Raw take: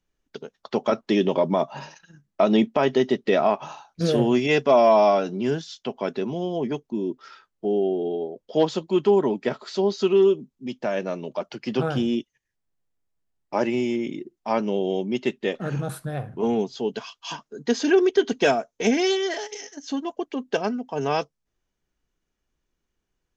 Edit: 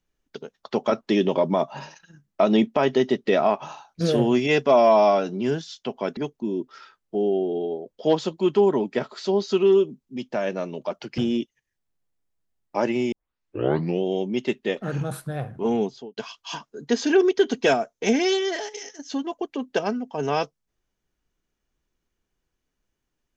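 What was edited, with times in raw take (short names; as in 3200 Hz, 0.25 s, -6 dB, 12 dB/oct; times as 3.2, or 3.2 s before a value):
6.17–6.67 cut
11.68–11.96 cut
13.9 tape start 0.92 s
16.63–16.95 studio fade out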